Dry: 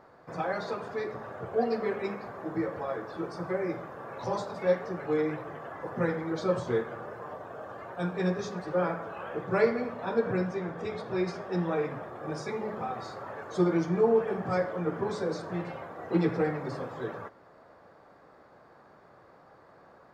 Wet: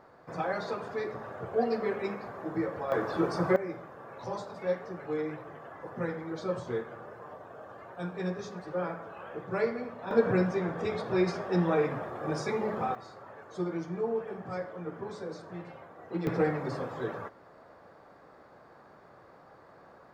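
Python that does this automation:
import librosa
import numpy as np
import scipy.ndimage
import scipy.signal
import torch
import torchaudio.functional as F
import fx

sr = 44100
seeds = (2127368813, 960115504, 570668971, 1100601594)

y = fx.gain(x, sr, db=fx.steps((0.0, -0.5), (2.92, 7.0), (3.56, -5.0), (10.11, 3.0), (12.95, -8.0), (16.27, 1.0)))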